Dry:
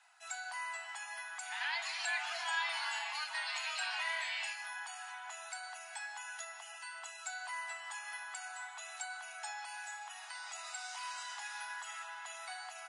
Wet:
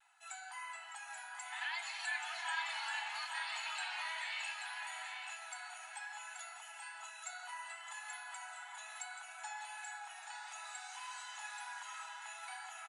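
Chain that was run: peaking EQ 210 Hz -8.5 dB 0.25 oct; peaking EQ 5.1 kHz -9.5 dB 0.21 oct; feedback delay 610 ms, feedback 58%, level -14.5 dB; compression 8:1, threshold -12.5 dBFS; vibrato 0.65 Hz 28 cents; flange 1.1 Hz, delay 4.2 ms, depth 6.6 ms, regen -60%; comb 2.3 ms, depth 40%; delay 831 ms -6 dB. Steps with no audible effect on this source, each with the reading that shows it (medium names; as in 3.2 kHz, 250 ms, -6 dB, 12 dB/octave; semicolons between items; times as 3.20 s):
peaking EQ 210 Hz: input has nothing below 600 Hz; compression, threshold -12.5 dBFS: peak at its input -24.0 dBFS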